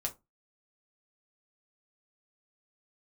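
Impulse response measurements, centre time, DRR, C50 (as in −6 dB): 8 ms, 0.0 dB, 18.0 dB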